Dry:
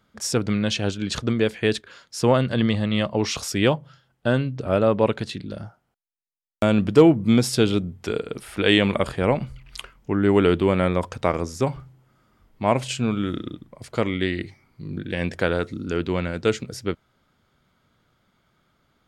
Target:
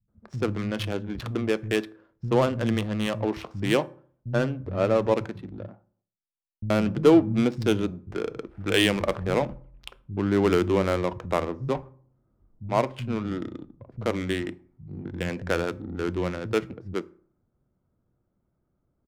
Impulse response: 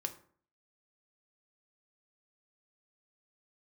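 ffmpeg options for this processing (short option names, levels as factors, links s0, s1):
-filter_complex "[0:a]adynamicsmooth=sensitivity=2:basefreq=520,acrossover=split=170[s0][s1];[s1]adelay=80[s2];[s0][s2]amix=inputs=2:normalize=0,asplit=2[s3][s4];[1:a]atrim=start_sample=2205[s5];[s4][s5]afir=irnorm=-1:irlink=0,volume=0.501[s6];[s3][s6]amix=inputs=2:normalize=0,volume=0.501"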